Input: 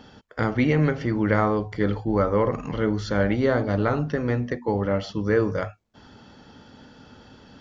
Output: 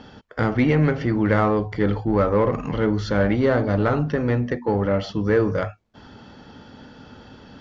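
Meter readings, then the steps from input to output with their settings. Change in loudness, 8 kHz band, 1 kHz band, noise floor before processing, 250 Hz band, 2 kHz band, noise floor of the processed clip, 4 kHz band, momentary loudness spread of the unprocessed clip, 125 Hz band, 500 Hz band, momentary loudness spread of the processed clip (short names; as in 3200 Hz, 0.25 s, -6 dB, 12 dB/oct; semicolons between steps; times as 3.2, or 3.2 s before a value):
+2.5 dB, n/a, +2.0 dB, -52 dBFS, +2.5 dB, +1.5 dB, -48 dBFS, +2.0 dB, 5 LU, +3.0 dB, +2.5 dB, 5 LU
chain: in parallel at -3 dB: soft clip -23.5 dBFS, distortion -8 dB; on the sum: air absorption 74 m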